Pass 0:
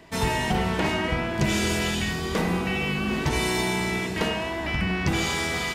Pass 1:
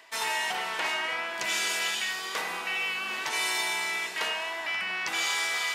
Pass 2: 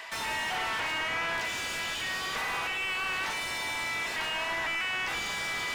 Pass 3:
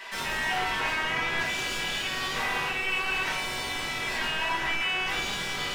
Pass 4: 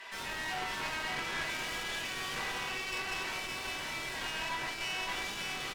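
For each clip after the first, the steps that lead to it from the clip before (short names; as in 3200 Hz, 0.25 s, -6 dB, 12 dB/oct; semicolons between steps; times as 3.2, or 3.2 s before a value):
HPF 990 Hz 12 dB/oct; reverse; upward compressor, threshold -32 dBFS; reverse
limiter -27 dBFS, peak gain reduction 10 dB; tilt +3 dB/oct; overdrive pedal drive 22 dB, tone 1100 Hz, clips at -19 dBFS
shoebox room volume 40 m³, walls mixed, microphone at 1.2 m; gain -4 dB
self-modulated delay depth 0.077 ms; echo 0.565 s -4.5 dB; one-sided clip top -34 dBFS; gain -6 dB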